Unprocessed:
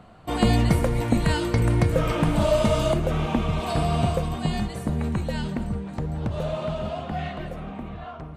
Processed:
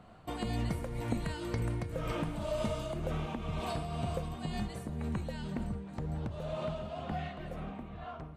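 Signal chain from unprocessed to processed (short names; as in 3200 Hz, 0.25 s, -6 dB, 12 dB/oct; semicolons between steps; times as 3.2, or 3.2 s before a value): compressor 3:1, threshold -26 dBFS, peak gain reduction 9 dB; tremolo triangle 2 Hz, depth 50%; gain -5 dB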